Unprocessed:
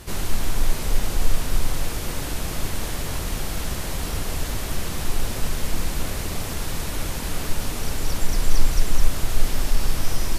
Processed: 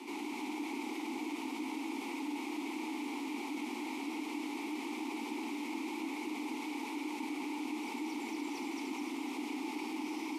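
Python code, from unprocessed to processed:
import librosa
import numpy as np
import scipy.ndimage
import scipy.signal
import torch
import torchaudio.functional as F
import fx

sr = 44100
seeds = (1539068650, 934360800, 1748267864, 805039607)

y = fx.octave_divider(x, sr, octaves=2, level_db=3.0)
y = scipy.signal.sosfilt(scipy.signal.butter(12, 230.0, 'highpass', fs=sr, output='sos'), y)
y = fx.high_shelf(y, sr, hz=4500.0, db=9.5)
y = 10.0 ** (-20.0 / 20.0) * (np.abs((y / 10.0 ** (-20.0 / 20.0) + 3.0) % 4.0 - 2.0) - 1.0)
y = fx.vowel_filter(y, sr, vowel='u')
y = y + 10.0 ** (-5.0 / 20.0) * np.pad(y, (int(296 * sr / 1000.0), 0))[:len(y)]
y = fx.env_flatten(y, sr, amount_pct=50)
y = y * librosa.db_to_amplitude(1.0)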